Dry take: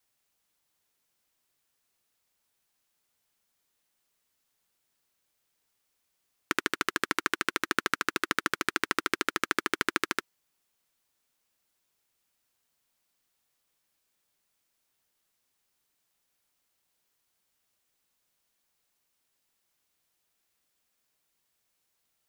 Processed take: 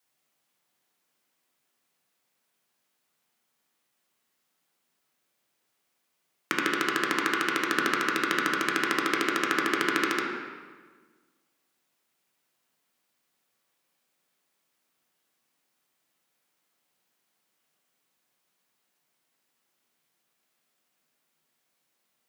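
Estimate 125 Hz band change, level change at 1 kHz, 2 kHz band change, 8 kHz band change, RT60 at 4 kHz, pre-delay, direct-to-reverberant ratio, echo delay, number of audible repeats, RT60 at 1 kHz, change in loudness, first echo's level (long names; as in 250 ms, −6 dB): +3.0 dB, +4.0 dB, +3.5 dB, 0.0 dB, 1.1 s, 9 ms, −2.0 dB, no echo audible, no echo audible, 1.4 s, +3.5 dB, no echo audible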